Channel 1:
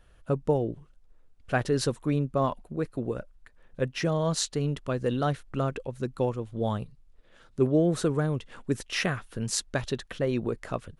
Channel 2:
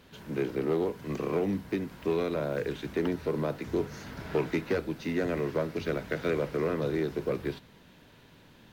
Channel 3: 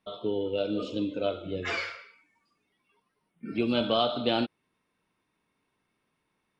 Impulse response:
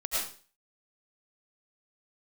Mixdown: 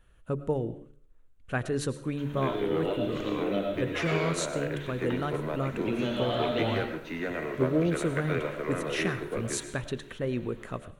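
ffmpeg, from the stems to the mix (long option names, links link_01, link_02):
-filter_complex "[0:a]equalizer=frequency=700:width_type=o:width=0.67:gain=-5,volume=-3dB,asplit=3[link_01][link_02][link_03];[link_02]volume=-20dB[link_04];[1:a]equalizer=frequency=1800:width_type=o:width=2.8:gain=7,adelay=2050,volume=-7.5dB,asplit=2[link_05][link_06];[link_06]volume=-10.5dB[link_07];[2:a]acompressor=threshold=-32dB:ratio=2.5,adelay=2300,volume=-0.5dB,asplit=2[link_08][link_09];[link_09]volume=-6.5dB[link_10];[link_03]apad=whole_len=392121[link_11];[link_08][link_11]sidechaincompress=threshold=-33dB:ratio=8:attack=16:release=272[link_12];[3:a]atrim=start_sample=2205[link_13];[link_04][link_07][link_10]amix=inputs=3:normalize=0[link_14];[link_14][link_13]afir=irnorm=-1:irlink=0[link_15];[link_01][link_05][link_12][link_15]amix=inputs=4:normalize=0,equalizer=frequency=5000:width_type=o:width=0.42:gain=-10,bandreject=frequency=72.63:width_type=h:width=4,bandreject=frequency=145.26:width_type=h:width=4,bandreject=frequency=217.89:width_type=h:width=4,bandreject=frequency=290.52:width_type=h:width=4,bandreject=frequency=363.15:width_type=h:width=4,bandreject=frequency=435.78:width_type=h:width=4,bandreject=frequency=508.41:width_type=h:width=4,bandreject=frequency=581.04:width_type=h:width=4"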